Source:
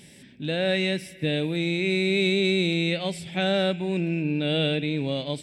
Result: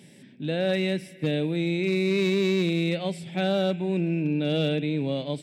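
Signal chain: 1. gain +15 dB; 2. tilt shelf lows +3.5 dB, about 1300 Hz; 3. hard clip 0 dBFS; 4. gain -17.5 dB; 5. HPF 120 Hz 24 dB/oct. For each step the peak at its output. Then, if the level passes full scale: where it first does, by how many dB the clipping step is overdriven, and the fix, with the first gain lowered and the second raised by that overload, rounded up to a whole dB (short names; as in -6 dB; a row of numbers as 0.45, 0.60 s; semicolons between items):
+2.5, +4.0, 0.0, -17.5, -13.5 dBFS; step 1, 4.0 dB; step 1 +11 dB, step 4 -13.5 dB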